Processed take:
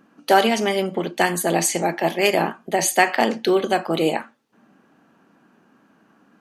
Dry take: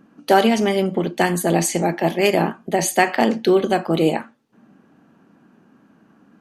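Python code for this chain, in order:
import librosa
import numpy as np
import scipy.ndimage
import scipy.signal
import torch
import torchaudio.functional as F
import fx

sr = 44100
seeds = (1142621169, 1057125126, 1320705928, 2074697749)

y = fx.low_shelf(x, sr, hz=330.0, db=-10.0)
y = y * librosa.db_to_amplitude(1.5)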